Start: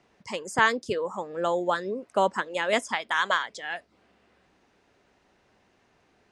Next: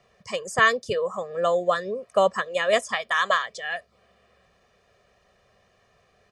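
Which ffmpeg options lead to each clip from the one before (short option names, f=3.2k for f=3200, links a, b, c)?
-af "aecho=1:1:1.7:0.93"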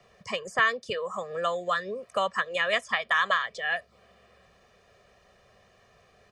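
-filter_complex "[0:a]acrossover=split=170|1100|3800[a][b][c][d];[a]acompressor=threshold=-55dB:ratio=4[e];[b]acompressor=threshold=-36dB:ratio=4[f];[c]acompressor=threshold=-24dB:ratio=4[g];[d]acompressor=threshold=-54dB:ratio=4[h];[e][f][g][h]amix=inputs=4:normalize=0,volume=2.5dB"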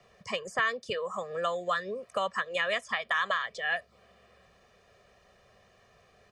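-af "alimiter=limit=-16.5dB:level=0:latency=1:release=162,volume=-1.5dB"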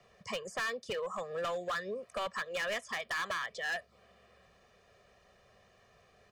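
-af "asoftclip=type=hard:threshold=-29dB,volume=-2.5dB"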